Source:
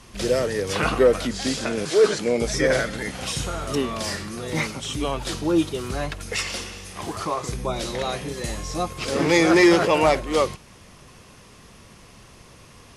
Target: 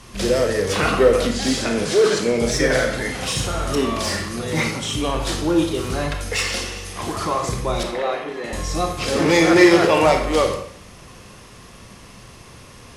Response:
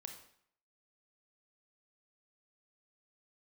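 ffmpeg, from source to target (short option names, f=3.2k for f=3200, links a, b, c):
-filter_complex "[0:a]asettb=1/sr,asplit=3[a][b][c];[a]atrim=end=7.834[d];[b]atrim=start=7.83:end=8.53,asetpts=PTS-STARTPTS,afade=t=in:d=0.004:c=qsin,afade=t=out:st=0.696:d=0.004:c=qsin,acrossover=split=250 3000:gain=0.0631 1 0.1[e][f][g];[e][f][g]amix=inputs=3:normalize=0[h];[c]atrim=start=8.526[i];[d][h]acrossfade=d=0.004:c1=hsin:c2=qsin[j];[j][i]acrossfade=d=0.004:c1=qsin:c2=hsin,asplit=2[k][l];[l]volume=24.5dB,asoftclip=hard,volume=-24.5dB,volume=-5.5dB[m];[k][m]amix=inputs=2:normalize=0[n];[1:a]atrim=start_sample=2205[o];[n][o]afir=irnorm=-1:irlink=0,volume=6dB"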